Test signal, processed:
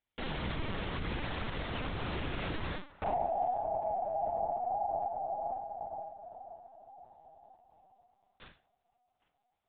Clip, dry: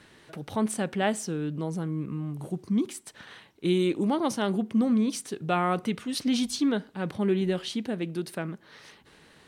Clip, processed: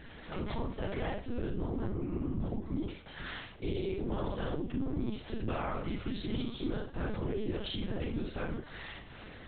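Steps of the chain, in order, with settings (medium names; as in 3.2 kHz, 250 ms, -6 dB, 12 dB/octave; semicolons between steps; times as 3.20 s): peaking EQ 110 Hz +12.5 dB 0.42 oct; compression 10:1, threshold -35 dBFS; on a send: band-passed feedback delay 802 ms, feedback 63%, band-pass 1 kHz, level -20 dB; on the sum: whisper effect; Schroeder reverb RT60 0.32 s, combs from 29 ms, DRR -0.5 dB; in parallel at +3 dB: peak limiter -31 dBFS; on the sum: LPC vocoder at 8 kHz pitch kept; trim -5 dB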